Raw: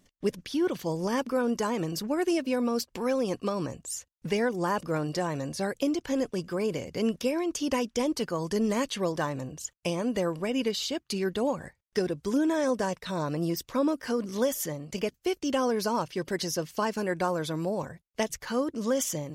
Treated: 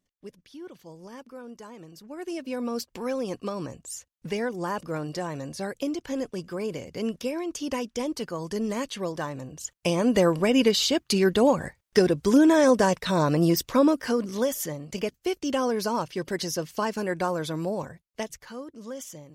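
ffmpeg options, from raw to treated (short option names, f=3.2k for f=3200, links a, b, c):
-af "volume=8dB,afade=t=in:st=2.02:d=0.71:silence=0.223872,afade=t=in:st=9.49:d=0.7:silence=0.316228,afade=t=out:st=13.58:d=0.81:silence=0.446684,afade=t=out:st=17.72:d=0.85:silence=0.266073"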